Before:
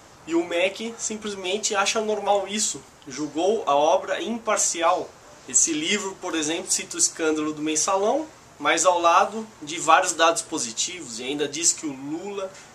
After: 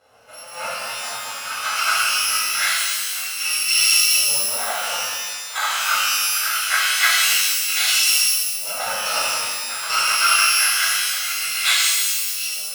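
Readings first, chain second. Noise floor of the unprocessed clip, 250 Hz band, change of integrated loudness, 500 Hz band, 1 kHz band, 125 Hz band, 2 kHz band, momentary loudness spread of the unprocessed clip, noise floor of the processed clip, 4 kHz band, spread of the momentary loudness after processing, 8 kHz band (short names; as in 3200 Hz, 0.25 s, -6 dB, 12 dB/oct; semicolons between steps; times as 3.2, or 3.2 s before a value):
-48 dBFS, under -20 dB, +5.0 dB, -14.0 dB, -2.0 dB, under -10 dB, +9.5 dB, 13 LU, -33 dBFS, +11.0 dB, 12 LU, +4.0 dB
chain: FFT order left unsorted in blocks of 128 samples; LFO band-pass saw up 0.24 Hz 550–3500 Hz; bell 170 Hz -12 dB 1.5 oct; shimmer reverb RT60 1.5 s, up +12 st, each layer -2 dB, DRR -7.5 dB; gain +9 dB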